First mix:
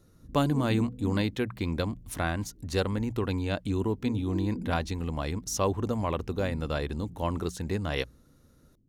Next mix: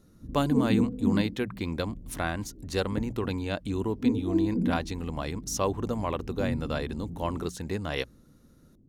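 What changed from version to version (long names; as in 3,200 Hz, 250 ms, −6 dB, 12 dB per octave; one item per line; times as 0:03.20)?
background +11.0 dB
master: add low-shelf EQ 110 Hz −6 dB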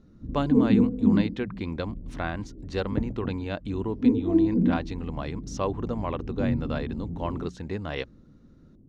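speech: add high-frequency loss of the air 150 metres
background +5.0 dB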